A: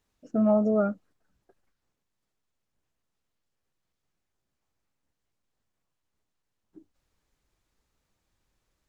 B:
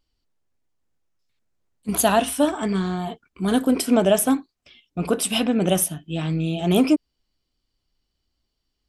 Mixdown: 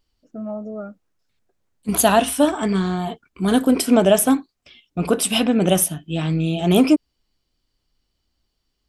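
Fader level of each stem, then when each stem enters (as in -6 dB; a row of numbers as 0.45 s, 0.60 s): -7.5 dB, +3.0 dB; 0.00 s, 0.00 s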